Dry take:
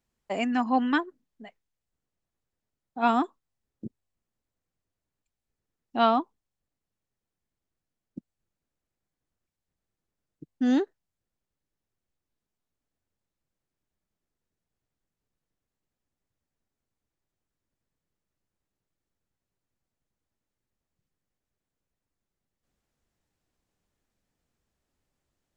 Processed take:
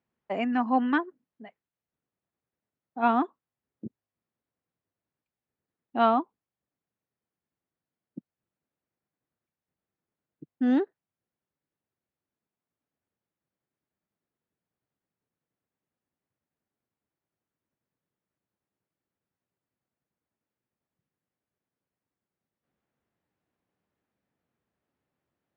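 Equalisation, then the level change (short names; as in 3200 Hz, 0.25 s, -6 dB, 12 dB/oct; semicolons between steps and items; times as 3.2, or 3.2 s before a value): BPF 120–2400 Hz; 0.0 dB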